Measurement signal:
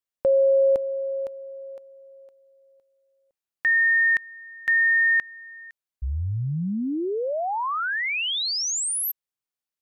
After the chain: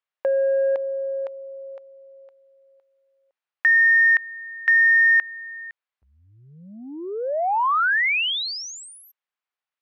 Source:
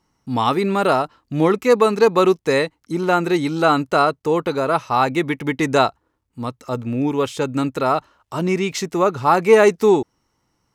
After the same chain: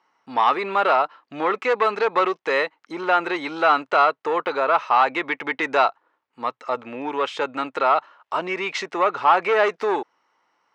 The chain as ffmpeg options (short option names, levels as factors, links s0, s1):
-filter_complex "[0:a]asplit=2[s0][s1];[s1]acompressor=threshold=0.0708:ratio=6:release=134:knee=1:detection=peak,volume=1[s2];[s0][s2]amix=inputs=2:normalize=0,asoftclip=type=tanh:threshold=0.398,highpass=730,lowpass=2600,volume=1.19"